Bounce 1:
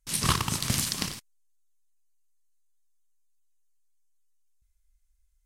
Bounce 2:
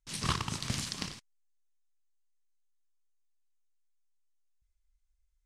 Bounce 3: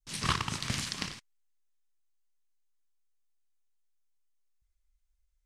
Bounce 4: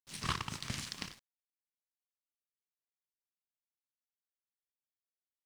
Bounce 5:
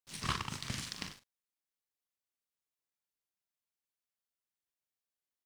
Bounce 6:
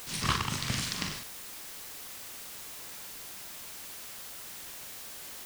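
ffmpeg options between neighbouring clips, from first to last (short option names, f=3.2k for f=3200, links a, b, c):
-af "lowpass=6.9k,volume=-6dB"
-af "adynamicequalizer=threshold=0.00447:dfrequency=1900:dqfactor=0.79:tfrequency=1900:tqfactor=0.79:attack=5:release=100:ratio=0.375:range=2.5:mode=boostabove:tftype=bell"
-af "aeval=exprs='sgn(val(0))*max(abs(val(0))-0.00398,0)':c=same,volume=-5.5dB"
-filter_complex "[0:a]asplit=2[a][b];[b]adelay=43,volume=-10dB[c];[a][c]amix=inputs=2:normalize=0"
-af "aeval=exprs='val(0)+0.5*0.0106*sgn(val(0))':c=same,volume=5dB"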